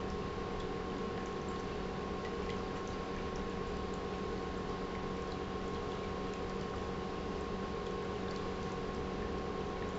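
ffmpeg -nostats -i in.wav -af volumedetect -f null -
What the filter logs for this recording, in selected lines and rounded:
mean_volume: -39.1 dB
max_volume: -26.2 dB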